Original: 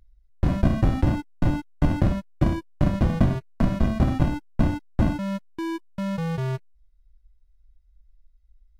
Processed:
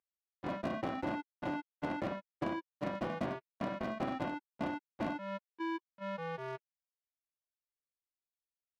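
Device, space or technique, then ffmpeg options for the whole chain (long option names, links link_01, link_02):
walkie-talkie: -af "highpass=410,lowpass=2900,asoftclip=type=hard:threshold=-25dB,agate=range=-17dB:threshold=-34dB:ratio=16:detection=peak,volume=-3.5dB"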